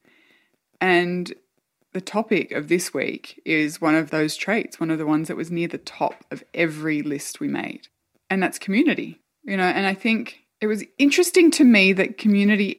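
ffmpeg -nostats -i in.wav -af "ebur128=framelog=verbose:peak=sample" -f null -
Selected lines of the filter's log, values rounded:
Integrated loudness:
  I:         -21.1 LUFS
  Threshold: -31.7 LUFS
Loudness range:
  LRA:         7.0 LU
  Threshold: -42.8 LUFS
  LRA low:   -25.7 LUFS
  LRA high:  -18.7 LUFS
Sample peak:
  Peak:       -3.4 dBFS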